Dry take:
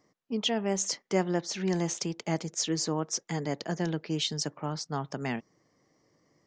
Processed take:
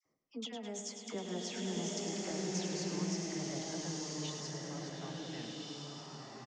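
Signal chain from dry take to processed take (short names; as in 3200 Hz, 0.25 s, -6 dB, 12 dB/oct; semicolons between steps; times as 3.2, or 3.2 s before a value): Doppler pass-by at 1.67, 12 m/s, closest 4.8 m; compressor, threshold -41 dBFS, peak gain reduction 16 dB; dispersion lows, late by 57 ms, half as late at 1200 Hz; flange 0.33 Hz, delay 7.3 ms, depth 4.3 ms, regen -43%; on a send: feedback echo 0.105 s, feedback 60%, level -8 dB; on the sum: bloom reverb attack 1.37 s, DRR -3 dB; gain +4.5 dB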